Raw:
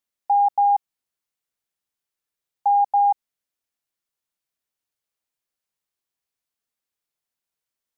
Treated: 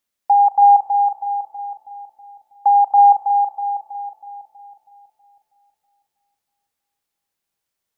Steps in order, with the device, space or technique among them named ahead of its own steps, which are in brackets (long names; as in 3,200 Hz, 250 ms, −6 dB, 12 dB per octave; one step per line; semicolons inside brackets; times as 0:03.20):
dub delay into a spring reverb (feedback echo with a low-pass in the loop 322 ms, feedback 63%, low-pass 950 Hz, level −4 dB; spring reverb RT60 2.8 s, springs 31 ms, chirp 30 ms, DRR 11 dB)
level +5.5 dB